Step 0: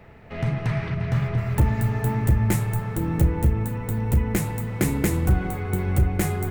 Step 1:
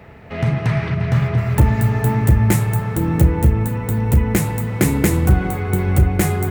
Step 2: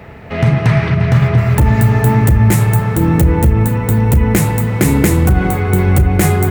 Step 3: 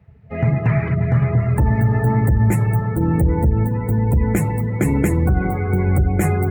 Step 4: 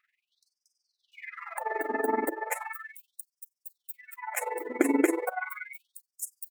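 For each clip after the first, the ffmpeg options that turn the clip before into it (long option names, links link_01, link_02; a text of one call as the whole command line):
ffmpeg -i in.wav -af "highpass=41,volume=6.5dB" out.wav
ffmpeg -i in.wav -af "alimiter=level_in=8dB:limit=-1dB:release=50:level=0:latency=1,volume=-1dB" out.wav
ffmpeg -i in.wav -af "afftdn=noise_reduction=22:noise_floor=-22,volume=-5.5dB" out.wav
ffmpeg -i in.wav -af "tremolo=f=21:d=0.824,afftfilt=real='re*gte(b*sr/1024,230*pow(4900/230,0.5+0.5*sin(2*PI*0.36*pts/sr)))':imag='im*gte(b*sr/1024,230*pow(4900/230,0.5+0.5*sin(2*PI*0.36*pts/sr)))':win_size=1024:overlap=0.75" out.wav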